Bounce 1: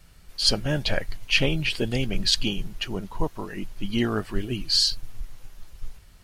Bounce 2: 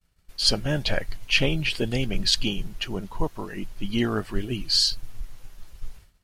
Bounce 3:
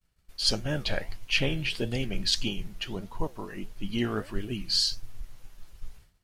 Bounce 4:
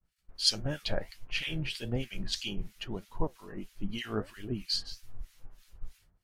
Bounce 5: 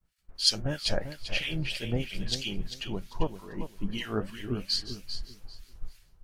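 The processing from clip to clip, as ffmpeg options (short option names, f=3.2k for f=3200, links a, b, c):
-af "agate=range=-33dB:threshold=-40dB:ratio=3:detection=peak"
-af "flanger=delay=8.2:depth=8.4:regen=80:speed=1.6:shape=sinusoidal"
-filter_complex "[0:a]acrossover=split=1500[a][b];[a]aeval=exprs='val(0)*(1-1/2+1/2*cos(2*PI*3.1*n/s))':c=same[c];[b]aeval=exprs='val(0)*(1-1/2-1/2*cos(2*PI*3.1*n/s))':c=same[d];[c][d]amix=inputs=2:normalize=0"
-af "aecho=1:1:394|788|1182:0.316|0.0664|0.0139,volume=2.5dB"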